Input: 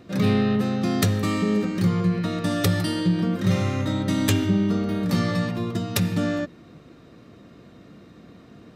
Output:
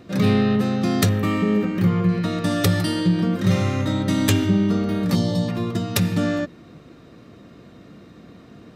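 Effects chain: 1.09–2.09 s: high-order bell 6.3 kHz -9 dB; 5.15–5.48 s: time-frequency box 1.1–2.8 kHz -15 dB; trim +2.5 dB

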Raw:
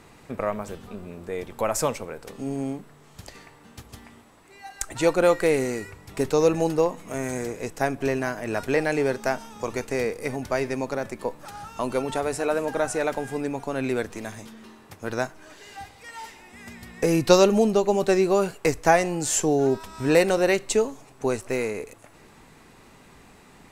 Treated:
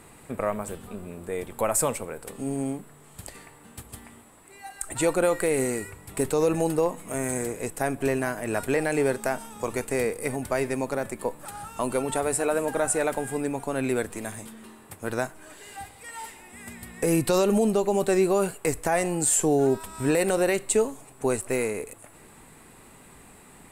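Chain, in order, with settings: resonant high shelf 7.1 kHz +6 dB, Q 3; peak limiter -12.5 dBFS, peak gain reduction 11.5 dB

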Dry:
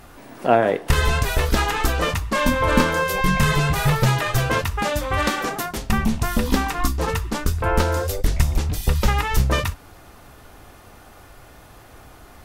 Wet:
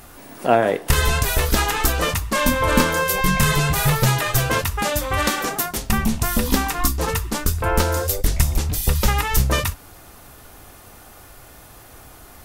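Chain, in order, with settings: treble shelf 6.6 kHz +11.5 dB

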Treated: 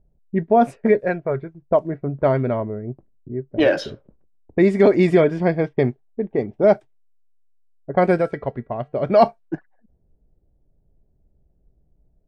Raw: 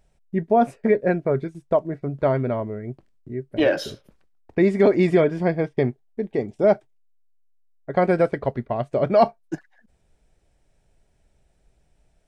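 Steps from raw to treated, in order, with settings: 0.99–1.62 s: peaking EQ 250 Hz -9.5 dB 1.5 oct; level-controlled noise filter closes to 380 Hz, open at -15.5 dBFS; 8.18–9.09 s: feedback comb 150 Hz, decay 0.43 s, harmonics odd, mix 40%; trim +2.5 dB

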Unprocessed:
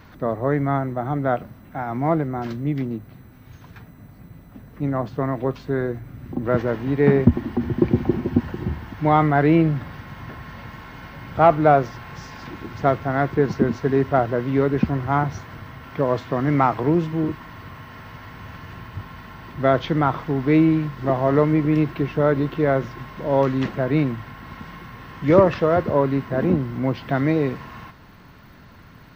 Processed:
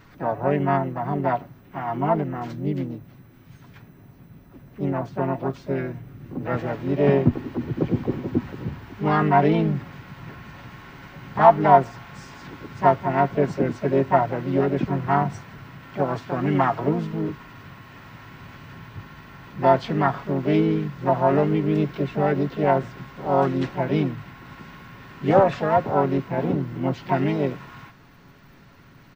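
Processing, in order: comb 7.2 ms, depth 49%; dynamic bell 700 Hz, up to +6 dB, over -35 dBFS, Q 5.2; harmony voices +5 st -5 dB, +7 st -14 dB; trim -6 dB

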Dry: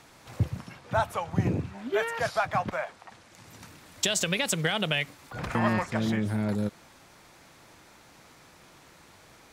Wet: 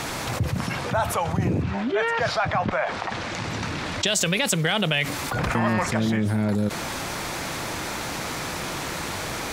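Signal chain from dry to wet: 1.62–4.07 s: low-pass 4.7 kHz 12 dB/octave; level flattener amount 70%

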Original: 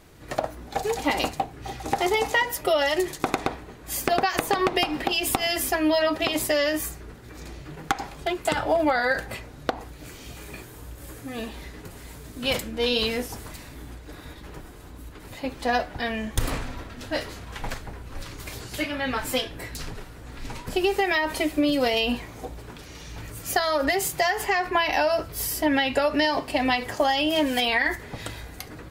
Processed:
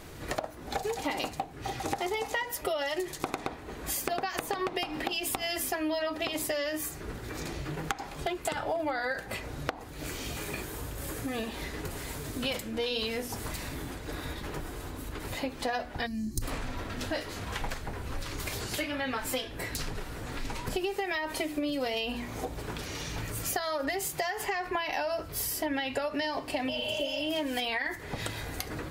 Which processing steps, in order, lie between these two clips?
time-frequency box 16.06–16.42 s, 380–3900 Hz -23 dB; hum notches 60/120/180/240/300 Hz; spectral replace 26.71–27.21 s, 600–4900 Hz after; compression 4:1, threshold -38 dBFS, peak gain reduction 17 dB; trim +6 dB

